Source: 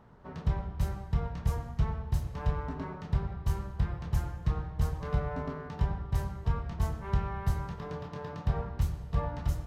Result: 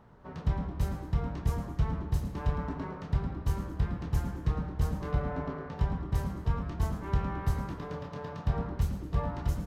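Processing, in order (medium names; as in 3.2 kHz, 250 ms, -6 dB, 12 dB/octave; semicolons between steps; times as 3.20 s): 5.11–5.76 s: treble shelf 6.8 kHz -9 dB; frequency-shifting echo 109 ms, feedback 44%, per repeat +120 Hz, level -12.5 dB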